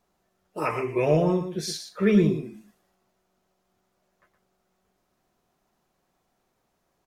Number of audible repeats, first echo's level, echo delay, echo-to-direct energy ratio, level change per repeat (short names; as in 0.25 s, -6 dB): 1, -9.0 dB, 0.117 s, -9.0 dB, no steady repeat